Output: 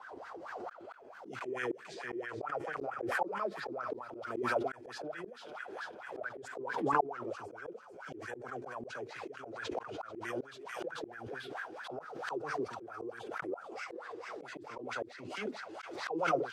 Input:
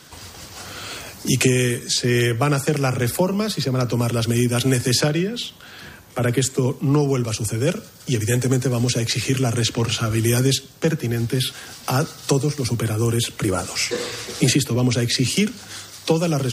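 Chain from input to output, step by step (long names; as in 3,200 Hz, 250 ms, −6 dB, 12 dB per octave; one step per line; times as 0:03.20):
LFO wah 4.5 Hz 330–1,600 Hz, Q 9.7
delay with a high-pass on its return 441 ms, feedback 61%, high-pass 1,900 Hz, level −7 dB
volume swells 530 ms
parametric band 760 Hz +11 dB 1.3 octaves
background raised ahead of every attack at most 44 dB per second
level +3 dB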